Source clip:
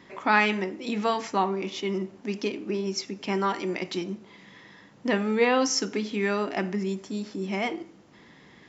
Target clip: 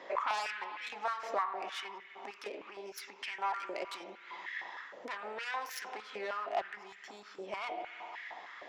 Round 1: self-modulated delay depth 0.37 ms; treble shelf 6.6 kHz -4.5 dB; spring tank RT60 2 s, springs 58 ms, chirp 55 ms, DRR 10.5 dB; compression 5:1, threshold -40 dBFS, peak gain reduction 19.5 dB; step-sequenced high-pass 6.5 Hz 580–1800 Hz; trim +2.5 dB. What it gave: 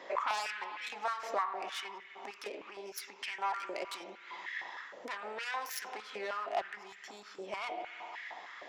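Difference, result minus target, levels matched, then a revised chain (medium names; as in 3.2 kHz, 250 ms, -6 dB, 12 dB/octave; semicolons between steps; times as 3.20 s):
8 kHz band +4.0 dB
self-modulated delay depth 0.37 ms; treble shelf 6.6 kHz -13 dB; spring tank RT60 2 s, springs 58 ms, chirp 55 ms, DRR 10.5 dB; compression 5:1, threshold -40 dBFS, peak gain reduction 19 dB; step-sequenced high-pass 6.5 Hz 580–1800 Hz; trim +2.5 dB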